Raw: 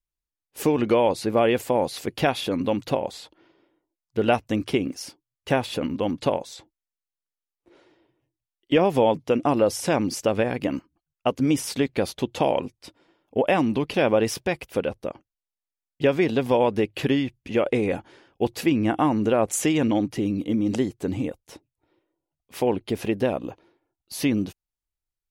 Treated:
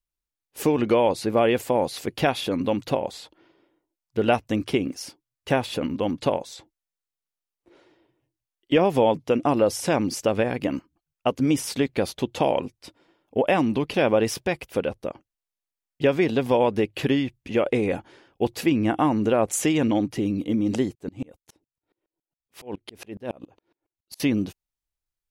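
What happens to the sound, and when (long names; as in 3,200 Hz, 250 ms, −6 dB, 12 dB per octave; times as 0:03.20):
0:20.95–0:24.20: tremolo with a ramp in dB swelling 7.2 Hz, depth 33 dB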